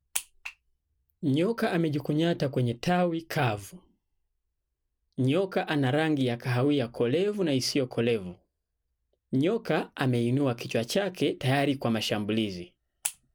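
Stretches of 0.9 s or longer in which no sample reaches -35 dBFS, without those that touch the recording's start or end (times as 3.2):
3.67–5.19
8.31–9.33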